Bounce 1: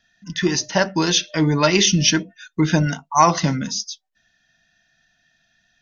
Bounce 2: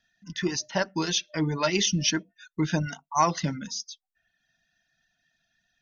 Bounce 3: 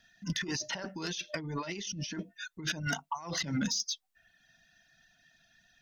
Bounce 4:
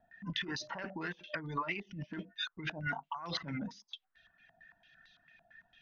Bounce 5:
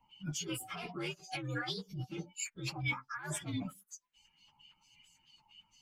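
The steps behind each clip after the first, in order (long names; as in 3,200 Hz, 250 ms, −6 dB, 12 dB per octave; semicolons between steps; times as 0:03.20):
reverb reduction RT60 0.62 s; level −8 dB
compressor whose output falls as the input rises −36 dBFS, ratio −1; soft clipping −21.5 dBFS, distortion −21 dB
downward compressor 5 to 1, threshold −35 dBFS, peak gain reduction 7 dB; low-pass on a step sequencer 8.9 Hz 750–3,800 Hz; level −2 dB
partials spread apart or drawn together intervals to 125%; level +3.5 dB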